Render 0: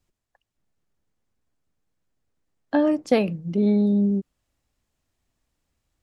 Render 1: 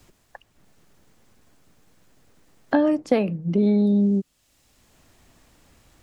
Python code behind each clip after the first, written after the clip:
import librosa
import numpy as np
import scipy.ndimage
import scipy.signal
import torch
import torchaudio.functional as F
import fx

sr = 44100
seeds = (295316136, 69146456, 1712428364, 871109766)

y = fx.band_squash(x, sr, depth_pct=70)
y = F.gain(torch.from_numpy(y), 1.0).numpy()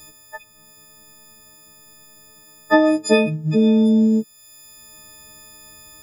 y = fx.freq_snap(x, sr, grid_st=6)
y = F.gain(torch.from_numpy(y), 4.0).numpy()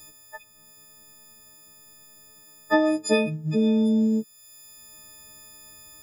y = fx.high_shelf(x, sr, hz=5600.0, db=4.0)
y = F.gain(torch.from_numpy(y), -6.0).numpy()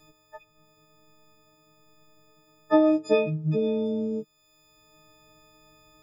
y = fx.lowpass(x, sr, hz=1600.0, slope=6)
y = y + 0.73 * np.pad(y, (int(6.5 * sr / 1000.0), 0))[:len(y)]
y = F.gain(torch.from_numpy(y), -2.5).numpy()